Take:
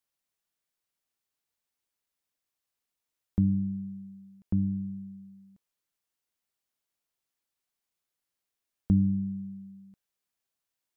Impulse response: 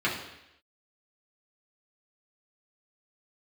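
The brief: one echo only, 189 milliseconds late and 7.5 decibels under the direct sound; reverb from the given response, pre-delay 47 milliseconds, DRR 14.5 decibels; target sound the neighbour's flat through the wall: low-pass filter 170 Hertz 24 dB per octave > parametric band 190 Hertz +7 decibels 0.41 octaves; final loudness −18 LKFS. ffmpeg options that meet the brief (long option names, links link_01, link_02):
-filter_complex "[0:a]aecho=1:1:189:0.422,asplit=2[link_01][link_02];[1:a]atrim=start_sample=2205,adelay=47[link_03];[link_02][link_03]afir=irnorm=-1:irlink=0,volume=-26.5dB[link_04];[link_01][link_04]amix=inputs=2:normalize=0,lowpass=frequency=170:width=0.5412,lowpass=frequency=170:width=1.3066,equalizer=frequency=190:width_type=o:width=0.41:gain=7,volume=9dB"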